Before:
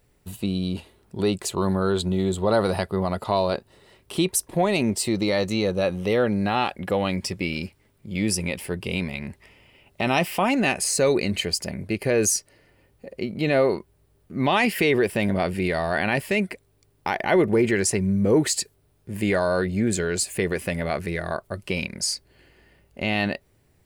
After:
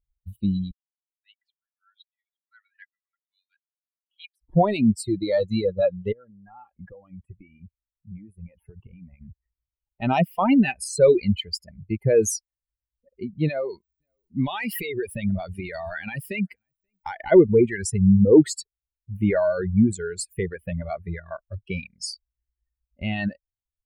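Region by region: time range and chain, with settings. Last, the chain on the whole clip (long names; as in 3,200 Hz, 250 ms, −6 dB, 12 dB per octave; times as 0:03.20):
0:00.71–0:04.42: Butterworth high-pass 1,700 Hz 48 dB per octave + high-frequency loss of the air 490 metres + multiband upward and downward expander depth 100%
0:06.12–0:10.02: downward compressor 12 to 1, threshold −29 dBFS + Butterworth band-reject 4,900 Hz, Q 0.92 + high-shelf EQ 3,200 Hz −10 dB
0:13.47–0:17.32: high-shelf EQ 2,600 Hz +9.5 dB + downward compressor 10 to 1, threshold −20 dBFS + single-tap delay 532 ms −21 dB
whole clip: spectral dynamics exaggerated over time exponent 2; tilt shelving filter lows +6.5 dB; reverb reduction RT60 1.9 s; level +4 dB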